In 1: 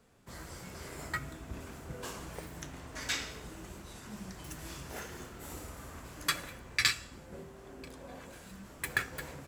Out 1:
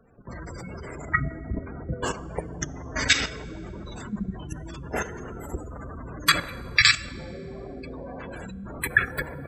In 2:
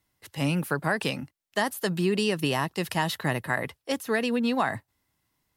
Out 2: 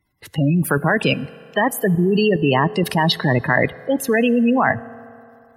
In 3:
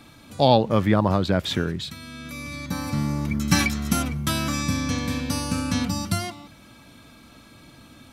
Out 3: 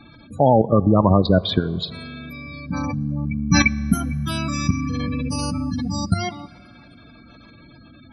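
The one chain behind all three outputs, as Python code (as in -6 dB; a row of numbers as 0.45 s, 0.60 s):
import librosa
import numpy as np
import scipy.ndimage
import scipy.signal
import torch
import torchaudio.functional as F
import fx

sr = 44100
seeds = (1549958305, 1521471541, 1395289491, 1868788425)

y = fx.spec_gate(x, sr, threshold_db=-15, keep='strong')
y = fx.level_steps(y, sr, step_db=11)
y = fx.rev_fdn(y, sr, rt60_s=2.8, lf_ratio=0.75, hf_ratio=0.6, size_ms=13.0, drr_db=18.5)
y = librosa.util.normalize(y) * 10.0 ** (-1.5 / 20.0)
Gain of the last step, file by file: +17.5 dB, +17.0 dB, +8.5 dB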